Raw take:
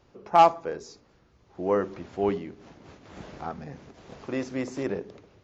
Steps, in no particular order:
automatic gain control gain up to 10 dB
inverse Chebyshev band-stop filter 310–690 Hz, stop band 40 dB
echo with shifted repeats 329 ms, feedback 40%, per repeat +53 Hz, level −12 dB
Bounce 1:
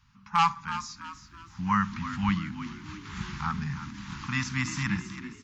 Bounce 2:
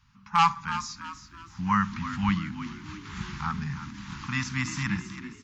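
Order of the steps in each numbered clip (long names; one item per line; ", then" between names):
automatic gain control, then inverse Chebyshev band-stop filter, then echo with shifted repeats
inverse Chebyshev band-stop filter, then automatic gain control, then echo with shifted repeats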